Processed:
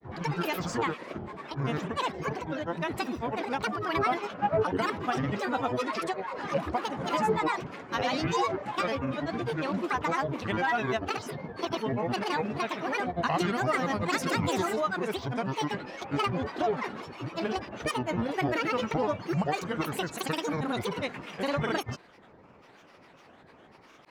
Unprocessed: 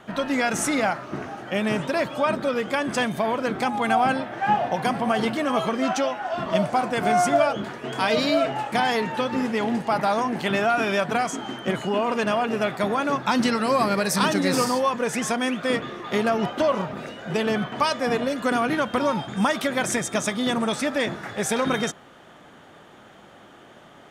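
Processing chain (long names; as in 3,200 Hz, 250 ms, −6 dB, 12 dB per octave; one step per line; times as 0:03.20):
high-shelf EQ 6,000 Hz −11.5 dB
granular cloud, pitch spread up and down by 12 semitones
level −5 dB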